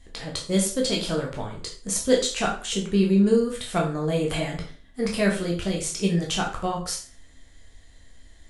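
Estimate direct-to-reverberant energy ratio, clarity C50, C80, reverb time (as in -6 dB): -1.5 dB, 7.5 dB, 12.5 dB, 0.40 s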